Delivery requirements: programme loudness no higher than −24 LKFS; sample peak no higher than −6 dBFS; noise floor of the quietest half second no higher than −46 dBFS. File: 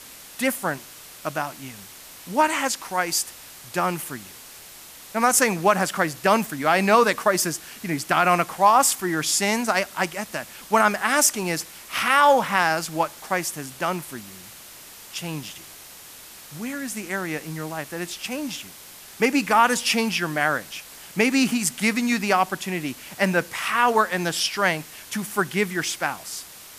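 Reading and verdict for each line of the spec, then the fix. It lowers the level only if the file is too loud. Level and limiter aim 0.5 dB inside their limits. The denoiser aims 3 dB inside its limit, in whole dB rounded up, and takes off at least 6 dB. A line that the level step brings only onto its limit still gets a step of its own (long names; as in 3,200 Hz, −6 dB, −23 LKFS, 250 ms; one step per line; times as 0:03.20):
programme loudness −22.5 LKFS: out of spec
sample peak −5.5 dBFS: out of spec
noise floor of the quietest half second −44 dBFS: out of spec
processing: broadband denoise 6 dB, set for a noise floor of −44 dBFS
level −2 dB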